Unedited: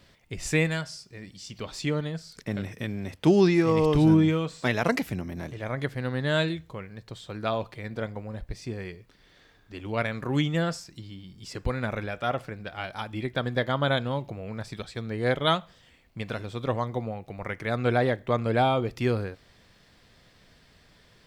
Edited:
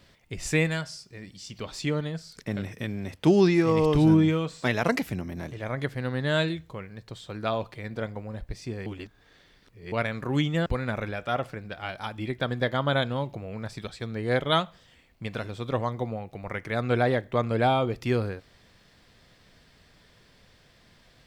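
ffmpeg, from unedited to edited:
ffmpeg -i in.wav -filter_complex "[0:a]asplit=4[link_01][link_02][link_03][link_04];[link_01]atrim=end=8.862[link_05];[link_02]atrim=start=8.858:end=9.922,asetpts=PTS-STARTPTS,areverse[link_06];[link_03]atrim=start=9.918:end=10.662[link_07];[link_04]atrim=start=11.608[link_08];[link_05][link_06]acrossfade=duration=0.004:curve1=hsin:curve2=hsin[link_09];[link_09][link_07]acrossfade=duration=0.004:curve1=hsin:curve2=hsin[link_10];[link_10][link_08]acrossfade=duration=0.004:curve1=hsin:curve2=hsin" out.wav

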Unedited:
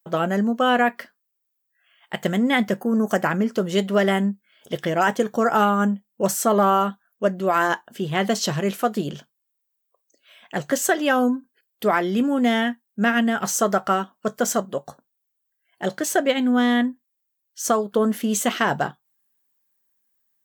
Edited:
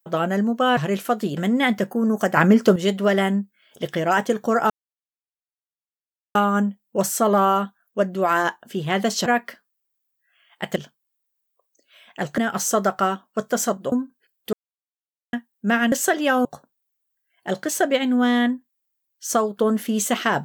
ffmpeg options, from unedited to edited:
ffmpeg -i in.wav -filter_complex "[0:a]asplit=14[link_01][link_02][link_03][link_04][link_05][link_06][link_07][link_08][link_09][link_10][link_11][link_12][link_13][link_14];[link_01]atrim=end=0.772[link_15];[link_02]atrim=start=8.508:end=9.112[link_16];[link_03]atrim=start=2.268:end=3.272[link_17];[link_04]atrim=start=3.268:end=3.662,asetpts=PTS-STARTPTS,volume=7.5dB[link_18];[link_05]atrim=start=3.658:end=5.6,asetpts=PTS-STARTPTS,afade=type=out:start_time=1.938:duration=0.004:curve=hsin,apad=pad_dur=1.65[link_19];[link_06]atrim=start=5.6:end=8.512,asetpts=PTS-STARTPTS,afade=type=in:duration=0.004:curve=hsin[link_20];[link_07]atrim=start=0.768:end=2.272[link_21];[link_08]atrim=start=9.108:end=10.732[link_22];[link_09]atrim=start=13.258:end=14.802[link_23];[link_10]atrim=start=11.258:end=11.87,asetpts=PTS-STARTPTS,afade=type=out:start_time=0.608:duration=0.004:curve=hsin[link_24];[link_11]atrim=start=11.87:end=12.67,asetpts=PTS-STARTPTS,volume=0[link_25];[link_12]atrim=start=12.67:end=13.262,asetpts=PTS-STARTPTS,afade=type=in:duration=0.004:curve=hsin[link_26];[link_13]atrim=start=10.728:end=11.262[link_27];[link_14]atrim=start=14.798[link_28];[link_15][link_16]acrossfade=duration=0.004:curve1=hsin:curve2=hsin[link_29];[link_29][link_17]acrossfade=duration=0.004:curve1=hsin:curve2=hsin[link_30];[link_30][link_18]acrossfade=duration=0.004:curve1=hsin:curve2=hsin[link_31];[link_19][link_20]concat=n=2:v=0:a=1[link_32];[link_31][link_32]acrossfade=duration=0.004:curve1=hsin:curve2=hsin[link_33];[link_33][link_21]acrossfade=duration=0.004:curve1=hsin:curve2=hsin[link_34];[link_34][link_22]acrossfade=duration=0.004:curve1=hsin:curve2=hsin[link_35];[link_35][link_23]acrossfade=duration=0.004:curve1=hsin:curve2=hsin[link_36];[link_24][link_25][link_26]concat=n=3:v=0:a=1[link_37];[link_36][link_37]acrossfade=duration=0.004:curve1=hsin:curve2=hsin[link_38];[link_38][link_27]acrossfade=duration=0.004:curve1=hsin:curve2=hsin[link_39];[link_39][link_28]acrossfade=duration=0.004:curve1=hsin:curve2=hsin" out.wav

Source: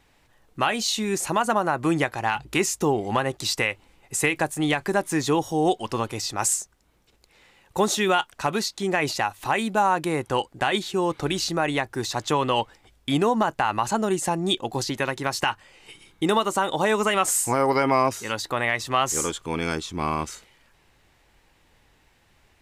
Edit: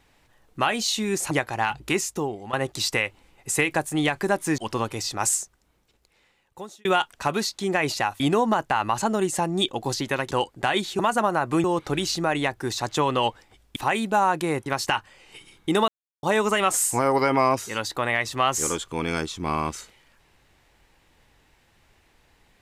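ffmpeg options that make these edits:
ffmpeg -i in.wav -filter_complex "[0:a]asplit=13[link_01][link_02][link_03][link_04][link_05][link_06][link_07][link_08][link_09][link_10][link_11][link_12][link_13];[link_01]atrim=end=1.312[link_14];[link_02]atrim=start=1.958:end=3.18,asetpts=PTS-STARTPTS,afade=type=out:start_time=0.502:duration=0.72:silence=0.199526[link_15];[link_03]atrim=start=3.18:end=5.232,asetpts=PTS-STARTPTS,afade=type=in:duration=0.004:curve=hsin:silence=0.199526[link_16];[link_04]atrim=start=5.768:end=8.04,asetpts=PTS-STARTPTS,afade=type=out:start_time=0.812:duration=1.46[link_17];[link_05]atrim=start=8.04:end=9.392,asetpts=PTS-STARTPTS,afade=type=in:duration=0.004:curve=hsin[link_18];[link_06]atrim=start=13.088:end=15.202[link_19];[link_07]atrim=start=10.288:end=10.972[link_20];[link_08]atrim=start=1.308:end=1.962[link_21];[link_09]atrim=start=10.968:end=13.092[link_22];[link_10]atrim=start=9.388:end=10.292[link_23];[link_11]atrim=start=15.198:end=16.42,asetpts=PTS-STARTPTS,afade=type=out:start_time=1.218:duration=0.004:curve=hsin[link_24];[link_12]atrim=start=16.42:end=16.77,asetpts=PTS-STARTPTS,volume=0[link_25];[link_13]atrim=start=16.77,asetpts=PTS-STARTPTS,afade=type=in:duration=0.004:curve=hsin[link_26];[link_15][link_16]concat=n=2:v=0:a=1[link_27];[link_14][link_27]acrossfade=duration=0.004:curve1=hsin:curve2=hsin[link_28];[link_17][link_18]concat=n=2:v=0:a=1[link_29];[link_28][link_29]acrossfade=duration=0.004:curve1=hsin:curve2=hsin[link_30];[link_30][link_19]acrossfade=duration=0.004:curve1=hsin:curve2=hsin[link_31];[link_31][link_20]acrossfade=duration=0.004:curve1=hsin:curve2=hsin[link_32];[link_32][link_21]acrossfade=duration=0.004:curve1=hsin:curve2=hsin[link_33];[link_33][link_22]acrossfade=duration=0.004:curve1=hsin:curve2=hsin[link_34];[link_34][link_23]acrossfade=duration=0.004:curve1=hsin:curve2=hsin[link_35];[link_24][link_25][link_26]concat=n=3:v=0:a=1[link_36];[link_35][link_36]acrossfade=duration=0.004:curve1=hsin:curve2=hsin" out.wav

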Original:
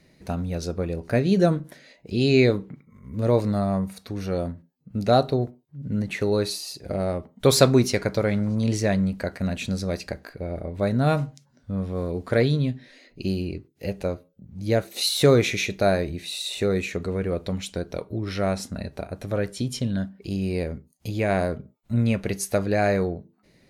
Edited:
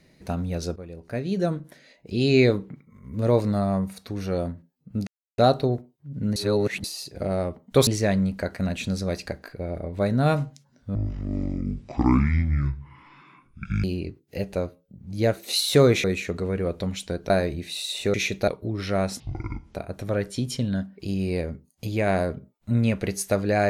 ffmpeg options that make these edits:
ffmpeg -i in.wav -filter_complex "[0:a]asplit=14[link_01][link_02][link_03][link_04][link_05][link_06][link_07][link_08][link_09][link_10][link_11][link_12][link_13][link_14];[link_01]atrim=end=0.76,asetpts=PTS-STARTPTS,afade=type=out:start_time=0.756:duration=0.004:curve=hsin:silence=0.211349[link_15];[link_02]atrim=start=0.76:end=5.07,asetpts=PTS-STARTPTS,afade=type=in:duration=1.69:silence=0.211349,afade=type=out:start_time=4.306:duration=0.004:curve=hsin,apad=pad_dur=0.31[link_16];[link_03]atrim=start=5.07:end=6.052,asetpts=PTS-STARTPTS,afade=type=in:duration=0.004:curve=hsin[link_17];[link_04]atrim=start=6.048:end=6.532,asetpts=PTS-STARTPTS,areverse[link_18];[link_05]atrim=start=6.528:end=7.562[link_19];[link_06]atrim=start=8.678:end=11.764[link_20];[link_07]atrim=start=11.76:end=13.32,asetpts=PTS-STARTPTS,asetrate=23814,aresample=44100[link_21];[link_08]atrim=start=13.316:end=15.522[link_22];[link_09]atrim=start=16.698:end=17.962[link_23];[link_10]atrim=start=15.858:end=16.702[link_24];[link_11]atrim=start=15.518:end=15.862[link_25];[link_12]atrim=start=17.958:end=18.684[link_26];[link_13]atrim=start=18.68:end=18.97,asetpts=PTS-STARTPTS,asetrate=23373,aresample=44100,atrim=end_sample=24130,asetpts=PTS-STARTPTS[link_27];[link_14]atrim=start=18.966[link_28];[link_15][link_16][link_17]concat=n=3:v=0:a=1[link_29];[link_29][link_18]acrossfade=duration=0.004:curve1=hsin:curve2=hsin[link_30];[link_30][link_19]acrossfade=duration=0.004:curve1=hsin:curve2=hsin[link_31];[link_31][link_20]acrossfade=duration=0.004:curve1=hsin:curve2=hsin[link_32];[link_32][link_21]acrossfade=duration=0.004:curve1=hsin:curve2=hsin[link_33];[link_33][link_22]acrossfade=duration=0.004:curve1=hsin:curve2=hsin[link_34];[link_34][link_23]acrossfade=duration=0.004:curve1=hsin:curve2=hsin[link_35];[link_35][link_24]acrossfade=duration=0.004:curve1=hsin:curve2=hsin[link_36];[link_36][link_25]acrossfade=duration=0.004:curve1=hsin:curve2=hsin[link_37];[link_37][link_26]acrossfade=duration=0.004:curve1=hsin:curve2=hsin[link_38];[link_38][link_27]acrossfade=duration=0.004:curve1=hsin:curve2=hsin[link_39];[link_39][link_28]acrossfade=duration=0.004:curve1=hsin:curve2=hsin" out.wav

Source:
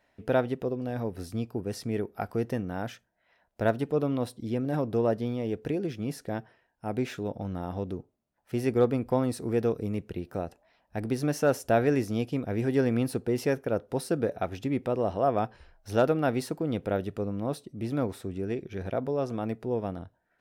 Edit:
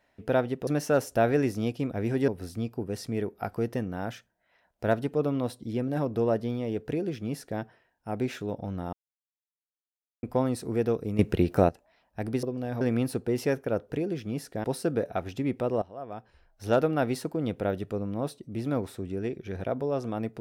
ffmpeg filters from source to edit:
ffmpeg -i in.wav -filter_complex "[0:a]asplit=12[link_01][link_02][link_03][link_04][link_05][link_06][link_07][link_08][link_09][link_10][link_11][link_12];[link_01]atrim=end=0.672[link_13];[link_02]atrim=start=11.198:end=12.812[link_14];[link_03]atrim=start=1.048:end=7.7,asetpts=PTS-STARTPTS,afade=type=out:start_time=6.648:duration=0.004:curve=hsin[link_15];[link_04]atrim=start=7.7:end=9,asetpts=PTS-STARTPTS,volume=0[link_16];[link_05]atrim=start=9:end=9.962,asetpts=PTS-STARTPTS,afade=type=in:duration=0.004:curve=hsin[link_17];[link_06]atrim=start=9.958:end=10.462,asetpts=PTS-STARTPTS,volume=11.5dB[link_18];[link_07]atrim=start=10.458:end=11.202[link_19];[link_08]atrim=start=0.668:end=1.052[link_20];[link_09]atrim=start=12.808:end=13.902[link_21];[link_10]atrim=start=5.628:end=6.372[link_22];[link_11]atrim=start=13.898:end=15.08,asetpts=PTS-STARTPTS,afade=type=out:start_time=1.178:duration=0.004:curve=hsin:silence=0.149624[link_23];[link_12]atrim=start=15.08,asetpts=PTS-STARTPTS,afade=type=in:duration=0.92:curve=qua:silence=0.149624[link_24];[link_13][link_14]acrossfade=duration=0.004:curve1=hsin:curve2=hsin[link_25];[link_15][link_16][link_17]concat=n=3:v=0:a=1[link_26];[link_25][link_26]acrossfade=duration=0.004:curve1=hsin:curve2=hsin[link_27];[link_27][link_18]acrossfade=duration=0.004:curve1=hsin:curve2=hsin[link_28];[link_28][link_19]acrossfade=duration=0.004:curve1=hsin:curve2=hsin[link_29];[link_29][link_20]acrossfade=duration=0.004:curve1=hsin:curve2=hsin[link_30];[link_30][link_21]acrossfade=duration=0.004:curve1=hsin:curve2=hsin[link_31];[link_31][link_22]acrossfade=duration=0.004:curve1=hsin:curve2=hsin[link_32];[link_23][link_24]concat=n=2:v=0:a=1[link_33];[link_32][link_33]acrossfade=duration=0.004:curve1=hsin:curve2=hsin" out.wav

